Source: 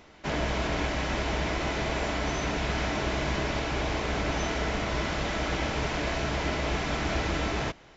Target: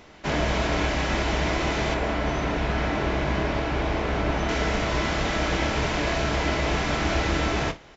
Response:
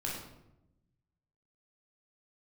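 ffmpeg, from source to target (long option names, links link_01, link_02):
-filter_complex "[0:a]asettb=1/sr,asplit=3[link_01][link_02][link_03];[link_01]atrim=end=1.944[link_04];[link_02]atrim=start=1.94:end=4.49,asetpts=PTS-STARTPTS,afade=type=in:duration=0.004:curve=qsin,afade=type=out:start_time=2.546:duration=0.004:curve=qsin,lowpass=frequency=2200:poles=1[link_05];[link_03]atrim=start=4.486[link_06];[link_04][link_05]acrossfade=duration=0.004:curve1=hsin:curve2=qsin[link_07];[link_07][link_06]acrossfade=duration=0.004:curve1=qsin:curve2=hsin,aecho=1:1:27|60:0.266|0.141,volume=4dB"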